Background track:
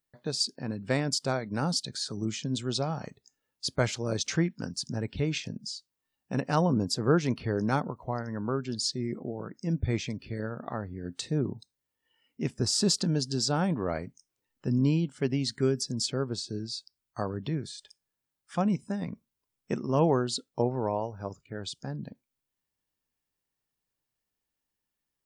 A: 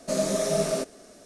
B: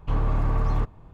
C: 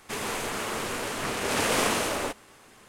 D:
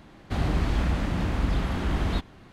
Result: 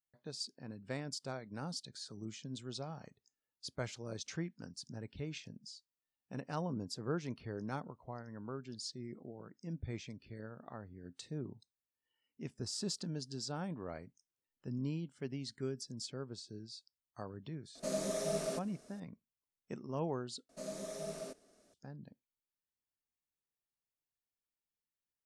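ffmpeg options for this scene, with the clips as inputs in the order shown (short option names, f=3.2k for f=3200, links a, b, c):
-filter_complex "[1:a]asplit=2[a][b];[0:a]volume=-13.5dB,asplit=2[c][d];[c]atrim=end=20.494[e];[b]atrim=end=1.25,asetpts=PTS-STARTPTS,volume=-18dB[f];[d]atrim=start=21.736[g];[a]atrim=end=1.25,asetpts=PTS-STARTPTS,volume=-11dB,afade=t=in:d=0.004:c=hsin,afade=t=out:st=1.246:d=0.004:c=hsin,adelay=17750[h];[e][f]acrossfade=d=0.004:c1=hsin:c2=hsin[i];[i][g]acrossfade=d=0.004:c1=hsin:c2=hsin[j];[j][h]amix=inputs=2:normalize=0"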